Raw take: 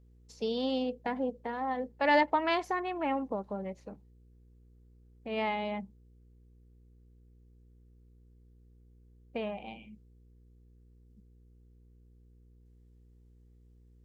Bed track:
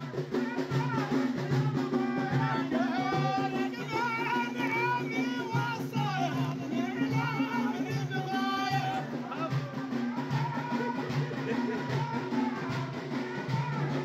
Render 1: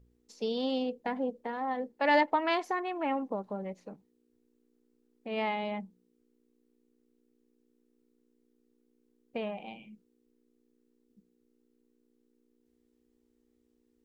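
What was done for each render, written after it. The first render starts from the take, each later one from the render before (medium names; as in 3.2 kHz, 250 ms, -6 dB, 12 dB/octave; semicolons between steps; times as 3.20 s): de-hum 60 Hz, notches 3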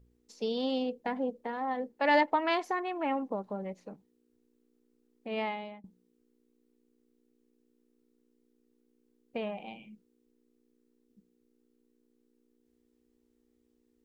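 5.34–5.84 s: fade out, to -23.5 dB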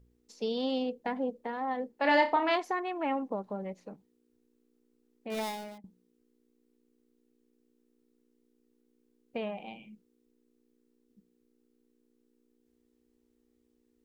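1.95–2.56 s: flutter echo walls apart 5.4 m, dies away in 0.27 s; 5.30–5.78 s: dead-time distortion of 0.19 ms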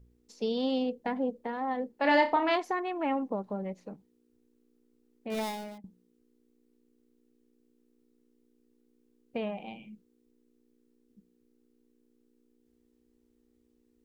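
bass shelf 280 Hz +5 dB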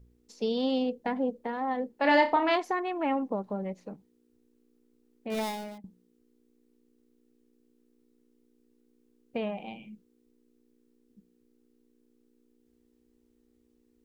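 trim +1.5 dB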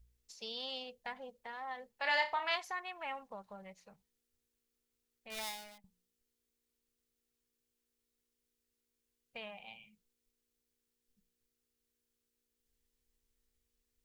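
amplifier tone stack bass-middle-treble 10-0-10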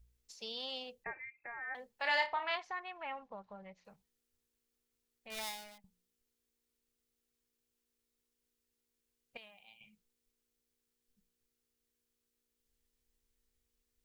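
1.04–1.75 s: frequency inversion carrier 2.6 kHz; 2.26–3.85 s: distance through air 160 m; 9.37–9.81 s: pre-emphasis filter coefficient 0.8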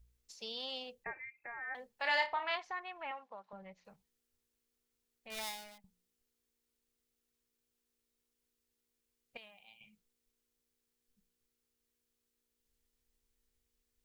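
3.11–3.53 s: frequency weighting A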